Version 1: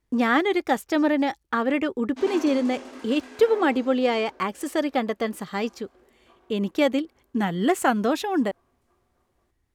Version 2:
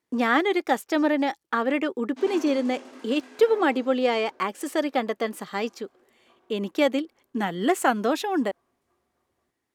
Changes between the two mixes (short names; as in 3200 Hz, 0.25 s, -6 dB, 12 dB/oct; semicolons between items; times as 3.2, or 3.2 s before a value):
speech: add HPF 240 Hz 12 dB/oct; background -4.0 dB